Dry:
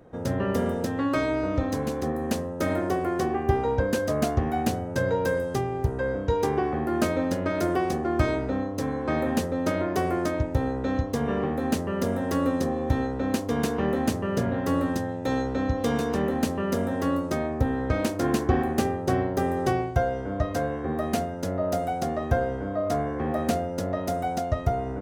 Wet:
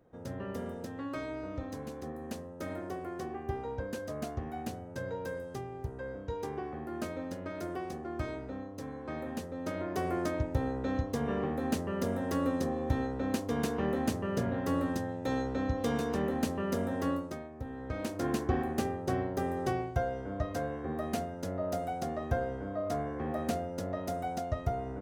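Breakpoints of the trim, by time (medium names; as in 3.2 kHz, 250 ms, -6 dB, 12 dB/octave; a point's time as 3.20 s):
9.46 s -13 dB
10.17 s -6 dB
17.11 s -6 dB
17.51 s -18.5 dB
18.21 s -7.5 dB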